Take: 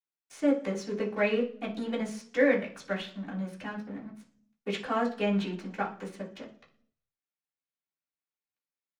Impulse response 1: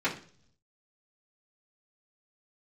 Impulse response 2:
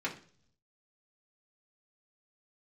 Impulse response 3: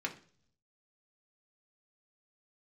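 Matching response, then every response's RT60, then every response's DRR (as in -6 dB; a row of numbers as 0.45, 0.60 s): 1; 0.50, 0.50, 0.50 s; -9.0, -4.5, 0.5 dB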